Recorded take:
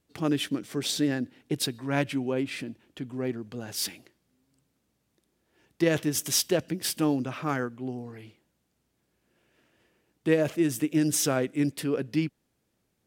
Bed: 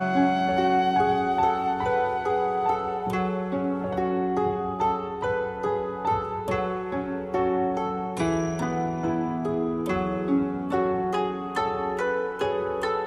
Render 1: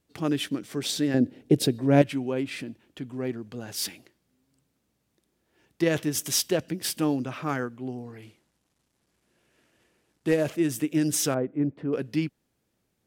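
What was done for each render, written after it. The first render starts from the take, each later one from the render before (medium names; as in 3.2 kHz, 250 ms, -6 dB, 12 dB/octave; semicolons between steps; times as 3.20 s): 1.14–2.02 s: resonant low shelf 760 Hz +8.5 dB, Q 1.5; 8.22–10.48 s: CVSD coder 64 kbps; 11.34–11.93 s: low-pass 1 kHz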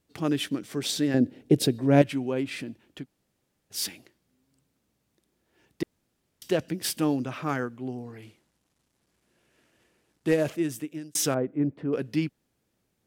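3.03–3.73 s: room tone, crossfade 0.06 s; 5.83–6.42 s: room tone; 10.42–11.15 s: fade out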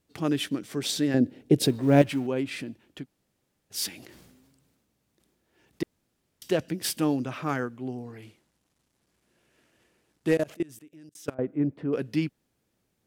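1.63–2.27 s: companding laws mixed up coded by mu; 3.89–5.82 s: decay stretcher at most 32 dB/s; 10.37–11.39 s: level held to a coarse grid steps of 24 dB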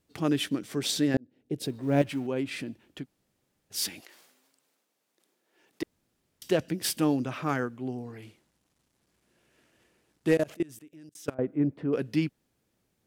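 1.17–2.68 s: fade in; 3.99–5.82 s: high-pass 760 Hz -> 280 Hz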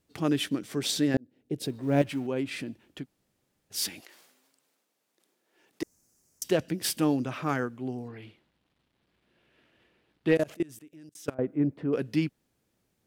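5.82–6.44 s: resonant high shelf 4.7 kHz +10 dB, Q 3; 8.08–10.36 s: resonant high shelf 4.9 kHz -11 dB, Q 1.5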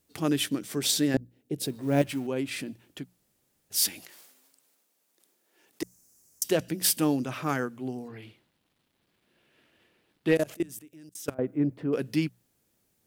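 treble shelf 6.8 kHz +11 dB; hum notches 60/120/180 Hz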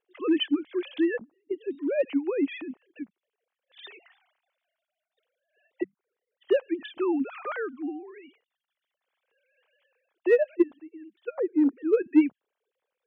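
formants replaced by sine waves; in parallel at -10.5 dB: hard clipper -20 dBFS, distortion -11 dB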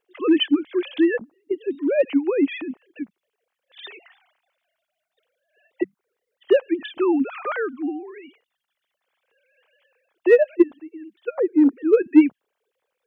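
trim +6.5 dB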